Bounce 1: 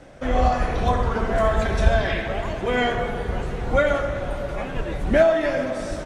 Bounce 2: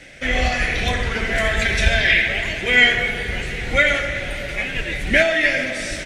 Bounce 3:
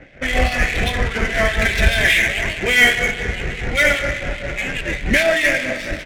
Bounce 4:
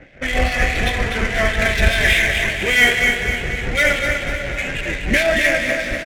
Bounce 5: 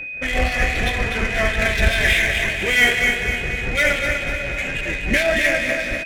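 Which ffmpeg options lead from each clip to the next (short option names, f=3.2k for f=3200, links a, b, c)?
-af "highshelf=f=1.5k:t=q:w=3:g=11,volume=-1dB"
-filter_complex "[0:a]asplit=2[a][b];[b]acontrast=78,volume=-2dB[c];[a][c]amix=inputs=2:normalize=0,acrossover=split=2500[d][e];[d]aeval=exprs='val(0)*(1-0.7/2+0.7/2*cos(2*PI*4.9*n/s))':c=same[f];[e]aeval=exprs='val(0)*(1-0.7/2-0.7/2*cos(2*PI*4.9*n/s))':c=same[g];[f][g]amix=inputs=2:normalize=0,adynamicsmooth=sensitivity=1.5:basefreq=1.4k,volume=-3dB"
-af "aecho=1:1:247|494|741|988|1235:0.473|0.218|0.1|0.0461|0.0212,volume=-1dB"
-af "aeval=exprs='val(0)+0.0501*sin(2*PI*2500*n/s)':c=same,volume=-2dB"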